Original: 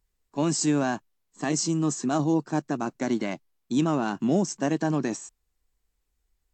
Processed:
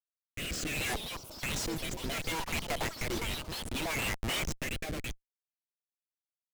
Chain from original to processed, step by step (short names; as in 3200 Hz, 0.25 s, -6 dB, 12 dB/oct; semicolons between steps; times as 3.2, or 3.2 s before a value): Wiener smoothing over 41 samples; reverb removal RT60 1.5 s; LFO high-pass sine 2.8 Hz 710–3300 Hz; resonant high shelf 1800 Hz +8.5 dB, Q 3; in parallel at -3 dB: compressor, threshold -33 dBFS, peak gain reduction 15 dB; on the sum: limiter -16 dBFS, peak gain reduction 8.5 dB; overdrive pedal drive 14 dB, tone 1400 Hz, clips at -16 dBFS; notches 50/100/150/200/250/300/350/400/450 Hz; Schmitt trigger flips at -40.5 dBFS; rotary speaker horn 0.65 Hz; echoes that change speed 0.49 s, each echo +6 st, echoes 3, each echo -6 dB; gain +4 dB